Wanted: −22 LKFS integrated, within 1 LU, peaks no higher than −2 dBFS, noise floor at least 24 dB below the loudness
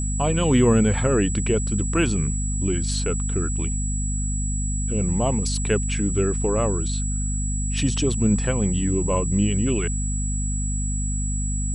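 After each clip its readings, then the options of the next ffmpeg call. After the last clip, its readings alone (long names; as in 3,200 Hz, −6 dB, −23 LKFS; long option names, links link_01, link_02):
mains hum 50 Hz; hum harmonics up to 250 Hz; level of the hum −23 dBFS; interfering tone 7,800 Hz; level of the tone −30 dBFS; integrated loudness −23.0 LKFS; sample peak −6.5 dBFS; target loudness −22.0 LKFS
→ -af "bandreject=frequency=50:width_type=h:width=4,bandreject=frequency=100:width_type=h:width=4,bandreject=frequency=150:width_type=h:width=4,bandreject=frequency=200:width_type=h:width=4,bandreject=frequency=250:width_type=h:width=4"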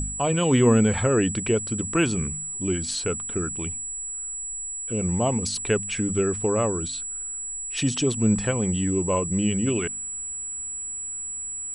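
mains hum none found; interfering tone 7,800 Hz; level of the tone −30 dBFS
→ -af "bandreject=frequency=7800:width=30"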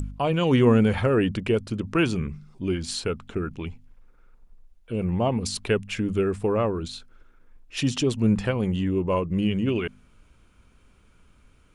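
interfering tone none found; integrated loudness −25.0 LKFS; sample peak −7.5 dBFS; target loudness −22.0 LKFS
→ -af "volume=3dB"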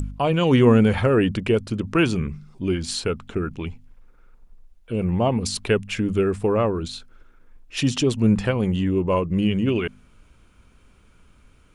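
integrated loudness −22.0 LKFS; sample peak −4.5 dBFS; background noise floor −55 dBFS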